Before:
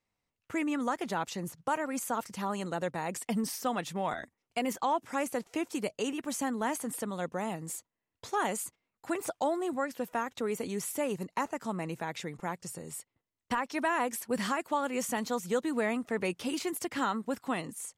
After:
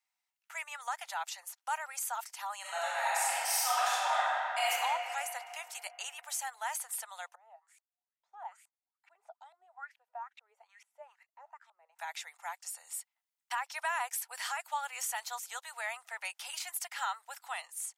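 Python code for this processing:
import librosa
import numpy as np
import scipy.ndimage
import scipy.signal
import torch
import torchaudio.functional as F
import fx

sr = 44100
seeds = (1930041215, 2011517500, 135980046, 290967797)

y = fx.reverb_throw(x, sr, start_s=2.6, length_s=2.11, rt60_s=3.0, drr_db=-10.0)
y = fx.filter_lfo_bandpass(y, sr, shape='saw_up', hz=2.3, low_hz=210.0, high_hz=2600.0, q=6.1, at=(7.35, 11.99))
y = scipy.signal.sosfilt(scipy.signal.butter(8, 730.0, 'highpass', fs=sr, output='sos'), y)
y = fx.high_shelf(y, sr, hz=5900.0, db=5.5)
y = fx.notch(y, sr, hz=1100.0, q=7.4)
y = y * 10.0 ** (-2.0 / 20.0)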